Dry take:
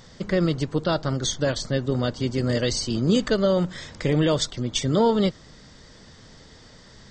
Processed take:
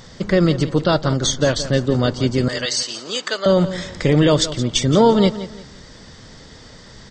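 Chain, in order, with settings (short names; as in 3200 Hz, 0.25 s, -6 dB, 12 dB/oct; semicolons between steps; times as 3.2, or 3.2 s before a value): 2.48–3.46 HPF 880 Hz 12 dB/oct; on a send: feedback echo 0.172 s, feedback 30%, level -14 dB; on the sum: gain +6.5 dB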